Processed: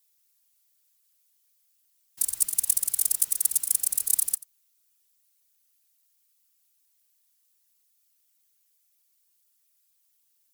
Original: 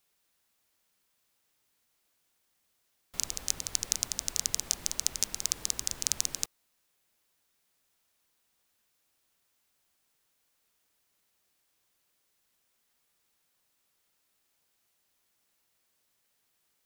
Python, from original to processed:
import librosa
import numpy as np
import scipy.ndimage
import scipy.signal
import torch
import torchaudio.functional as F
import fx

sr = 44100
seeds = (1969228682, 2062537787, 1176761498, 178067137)

p1 = fx.speed_glide(x, sr, from_pct=140, to_pct=180)
p2 = F.preemphasis(torch.from_numpy(p1), 0.9).numpy()
p3 = fx.whisperise(p2, sr, seeds[0])
p4 = p3 + fx.echo_single(p3, sr, ms=88, db=-19.5, dry=0)
y = p4 * librosa.db_to_amplitude(6.0)